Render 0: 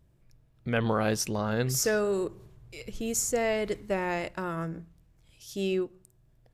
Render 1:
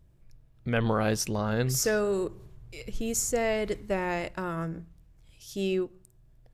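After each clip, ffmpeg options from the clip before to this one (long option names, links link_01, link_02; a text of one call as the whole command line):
ffmpeg -i in.wav -af "lowshelf=frequency=64:gain=8.5" out.wav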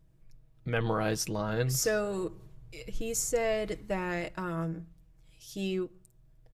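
ffmpeg -i in.wav -af "aecho=1:1:6.3:0.52,volume=-3.5dB" out.wav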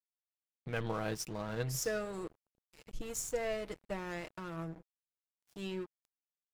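ffmpeg -i in.wav -af "aeval=exprs='sgn(val(0))*max(abs(val(0))-0.00841,0)':channel_layout=same,volume=-5.5dB" out.wav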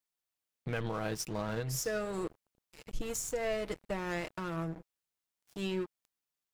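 ffmpeg -i in.wav -af "alimiter=level_in=6dB:limit=-24dB:level=0:latency=1:release=207,volume=-6dB,volume=5.5dB" out.wav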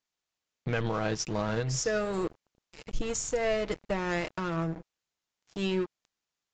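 ffmpeg -i in.wav -af "aresample=16000,aresample=44100,volume=5.5dB" out.wav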